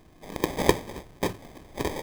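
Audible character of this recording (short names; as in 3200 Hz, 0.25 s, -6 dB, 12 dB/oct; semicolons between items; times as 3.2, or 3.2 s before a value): aliases and images of a low sample rate 1400 Hz, jitter 0%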